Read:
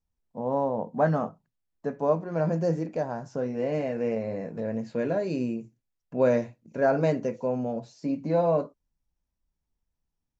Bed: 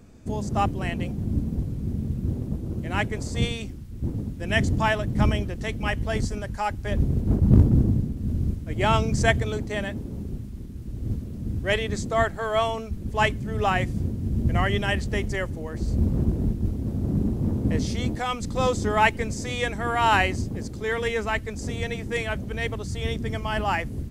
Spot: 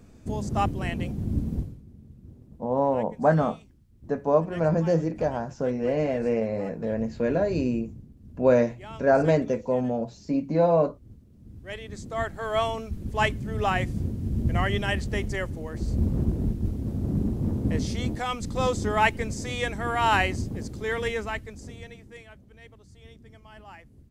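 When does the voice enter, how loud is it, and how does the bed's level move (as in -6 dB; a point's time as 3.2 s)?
2.25 s, +3.0 dB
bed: 1.59 s -1.5 dB
1.85 s -20.5 dB
11.26 s -20.5 dB
12.55 s -2 dB
21.08 s -2 dB
22.37 s -21.5 dB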